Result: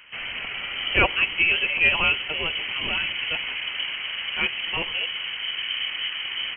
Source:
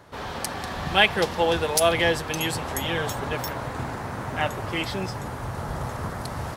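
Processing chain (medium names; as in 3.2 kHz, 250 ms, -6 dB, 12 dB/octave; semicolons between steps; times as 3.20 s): dynamic bell 1.7 kHz, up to -6 dB, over -41 dBFS, Q 1.8; frequency inversion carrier 3.1 kHz; trim +1.5 dB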